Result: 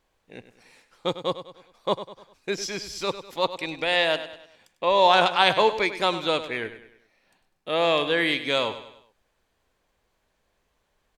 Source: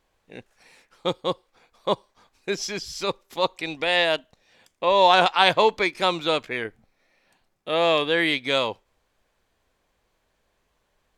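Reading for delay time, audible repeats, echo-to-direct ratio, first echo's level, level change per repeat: 100 ms, 4, −11.5 dB, −12.5 dB, −7.0 dB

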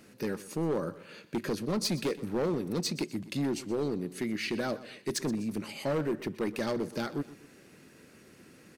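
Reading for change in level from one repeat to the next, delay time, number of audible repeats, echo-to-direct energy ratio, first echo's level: −7.0 dB, 124 ms, 2, −16.0 dB, −17.0 dB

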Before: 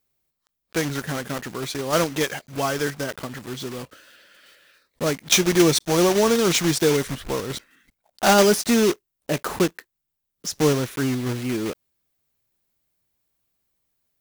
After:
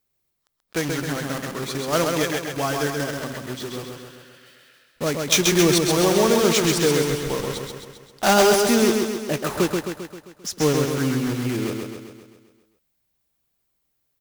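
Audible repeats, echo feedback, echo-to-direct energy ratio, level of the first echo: 7, 56%, −2.5 dB, −4.0 dB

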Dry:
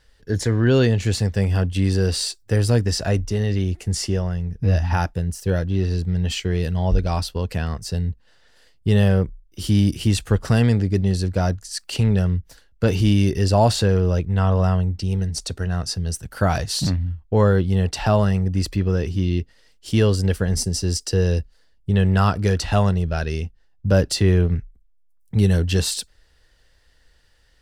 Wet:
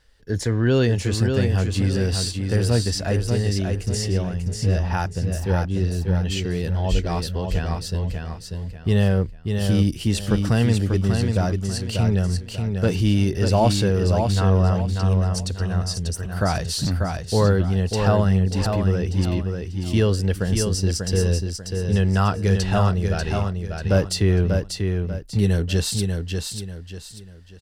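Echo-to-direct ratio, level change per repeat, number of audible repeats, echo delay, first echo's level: −4.5 dB, −9.5 dB, 3, 591 ms, −5.0 dB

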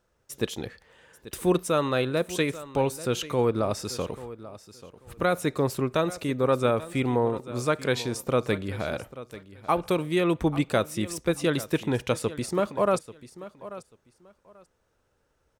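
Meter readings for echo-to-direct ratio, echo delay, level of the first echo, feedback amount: −16.0 dB, 838 ms, −16.0 dB, 20%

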